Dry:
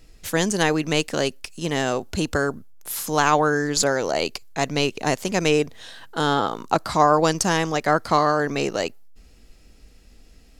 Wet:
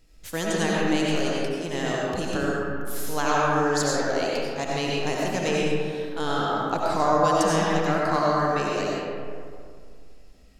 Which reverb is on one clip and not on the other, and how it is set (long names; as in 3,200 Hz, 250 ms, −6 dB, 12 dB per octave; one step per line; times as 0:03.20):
comb and all-pass reverb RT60 2.2 s, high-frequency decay 0.45×, pre-delay 50 ms, DRR −4.5 dB
level −8.5 dB